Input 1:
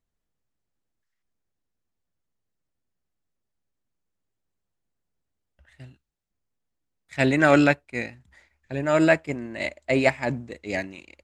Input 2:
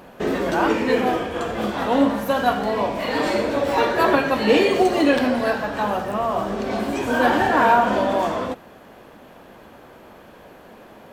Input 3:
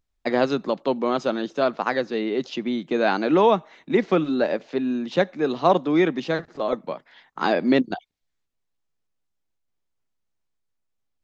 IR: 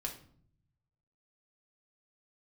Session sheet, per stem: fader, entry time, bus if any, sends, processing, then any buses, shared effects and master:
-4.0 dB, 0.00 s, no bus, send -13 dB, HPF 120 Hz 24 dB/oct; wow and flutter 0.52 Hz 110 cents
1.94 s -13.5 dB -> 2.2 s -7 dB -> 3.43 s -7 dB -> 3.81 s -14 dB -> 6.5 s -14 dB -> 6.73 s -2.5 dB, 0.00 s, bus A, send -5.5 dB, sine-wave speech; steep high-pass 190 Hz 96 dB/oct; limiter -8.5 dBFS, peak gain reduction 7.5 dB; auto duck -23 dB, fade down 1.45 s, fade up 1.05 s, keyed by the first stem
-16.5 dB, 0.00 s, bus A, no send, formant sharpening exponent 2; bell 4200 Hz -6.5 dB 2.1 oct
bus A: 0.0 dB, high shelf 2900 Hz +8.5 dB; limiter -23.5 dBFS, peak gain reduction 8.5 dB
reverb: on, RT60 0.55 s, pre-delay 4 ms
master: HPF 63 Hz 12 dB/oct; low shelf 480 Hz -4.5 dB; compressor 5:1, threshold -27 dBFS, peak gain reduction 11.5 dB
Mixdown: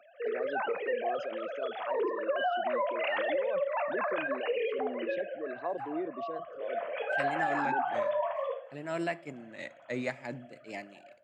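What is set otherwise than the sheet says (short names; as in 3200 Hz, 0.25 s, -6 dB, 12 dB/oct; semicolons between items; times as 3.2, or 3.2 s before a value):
stem 1 -4.0 dB -> -14.5 dB; master: missing low shelf 480 Hz -4.5 dB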